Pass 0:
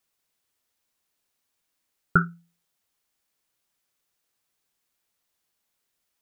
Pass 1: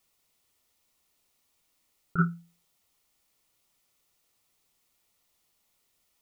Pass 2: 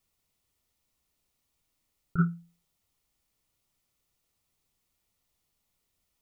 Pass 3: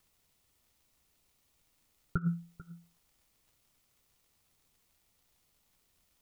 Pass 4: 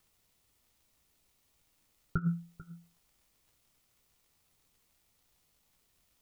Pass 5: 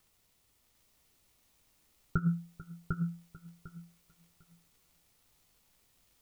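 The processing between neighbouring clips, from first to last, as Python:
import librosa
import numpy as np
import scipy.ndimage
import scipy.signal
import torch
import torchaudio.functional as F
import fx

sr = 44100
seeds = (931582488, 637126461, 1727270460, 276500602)

y1 = fx.low_shelf(x, sr, hz=89.0, db=5.5)
y1 = fx.notch(y1, sr, hz=1600.0, q=5.4)
y1 = fx.over_compress(y1, sr, threshold_db=-23.0, ratio=-0.5)
y1 = y1 * librosa.db_to_amplitude(1.0)
y2 = fx.low_shelf(y1, sr, hz=190.0, db=12.0)
y2 = y2 * librosa.db_to_amplitude(-6.0)
y3 = fx.over_compress(y2, sr, threshold_db=-30.0, ratio=-0.5)
y3 = fx.dmg_crackle(y3, sr, seeds[0], per_s=98.0, level_db=-60.0)
y3 = y3 + 10.0 ** (-18.5 / 20.0) * np.pad(y3, (int(442 * sr / 1000.0), 0))[:len(y3)]
y4 = fx.doubler(y3, sr, ms=19.0, db=-11.0)
y5 = fx.echo_feedback(y4, sr, ms=750, feedback_pct=17, wet_db=-4.0)
y5 = y5 * librosa.db_to_amplitude(1.5)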